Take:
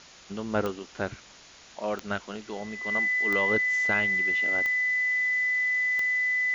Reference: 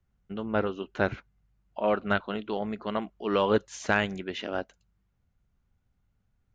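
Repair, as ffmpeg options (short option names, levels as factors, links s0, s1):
-af "adeclick=t=4,bandreject=f=2000:w=30,afwtdn=0.0045,asetnsamples=n=441:p=0,asendcmd='0.79 volume volume 5dB',volume=1"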